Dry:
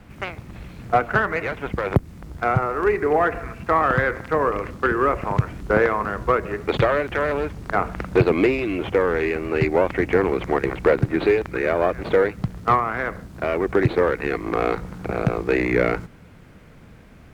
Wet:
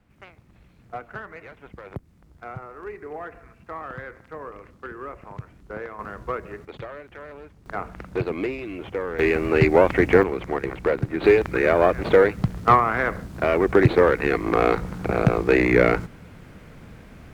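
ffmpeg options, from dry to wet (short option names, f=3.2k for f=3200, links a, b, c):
-af "asetnsamples=n=441:p=0,asendcmd='5.99 volume volume -9.5dB;6.65 volume volume -18dB;7.66 volume volume -9dB;9.19 volume volume 3dB;10.23 volume volume -5dB;11.24 volume volume 2.5dB',volume=-16.5dB"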